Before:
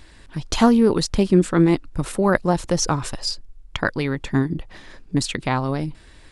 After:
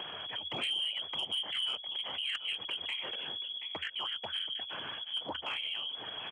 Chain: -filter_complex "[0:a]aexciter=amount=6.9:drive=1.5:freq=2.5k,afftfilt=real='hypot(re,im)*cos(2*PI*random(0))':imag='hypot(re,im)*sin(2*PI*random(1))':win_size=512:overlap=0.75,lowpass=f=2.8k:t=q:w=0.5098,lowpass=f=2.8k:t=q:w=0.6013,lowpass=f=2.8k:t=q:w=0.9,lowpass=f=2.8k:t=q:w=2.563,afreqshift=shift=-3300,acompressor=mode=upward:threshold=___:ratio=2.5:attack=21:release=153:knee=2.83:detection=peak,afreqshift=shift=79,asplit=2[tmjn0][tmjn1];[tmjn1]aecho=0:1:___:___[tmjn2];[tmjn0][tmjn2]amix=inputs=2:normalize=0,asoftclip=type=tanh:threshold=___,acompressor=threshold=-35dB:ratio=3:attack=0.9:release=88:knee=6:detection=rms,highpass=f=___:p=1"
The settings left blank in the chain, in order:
-30dB, 727, 0.106, -13.5dB, 44